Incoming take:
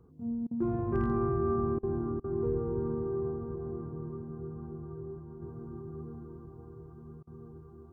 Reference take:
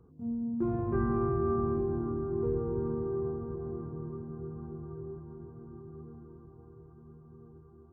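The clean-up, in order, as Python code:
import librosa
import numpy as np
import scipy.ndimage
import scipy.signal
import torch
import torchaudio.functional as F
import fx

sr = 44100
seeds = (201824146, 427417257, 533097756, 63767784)

y = fx.fix_declip(x, sr, threshold_db=-20.0)
y = fx.fix_interpolate(y, sr, at_s=(0.47, 1.79, 2.2, 7.23), length_ms=40.0)
y = fx.gain(y, sr, db=fx.steps((0.0, 0.0), (5.42, -4.5)))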